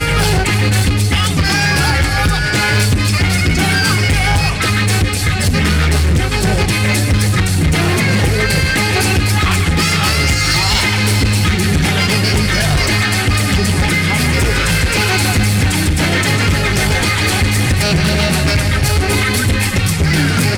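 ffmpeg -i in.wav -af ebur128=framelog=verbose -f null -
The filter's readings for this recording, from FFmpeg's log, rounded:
Integrated loudness:
  I:         -13.3 LUFS
  Threshold: -23.3 LUFS
Loudness range:
  LRA:         0.8 LU
  Threshold: -33.2 LUFS
  LRA low:   -13.6 LUFS
  LRA high:  -12.8 LUFS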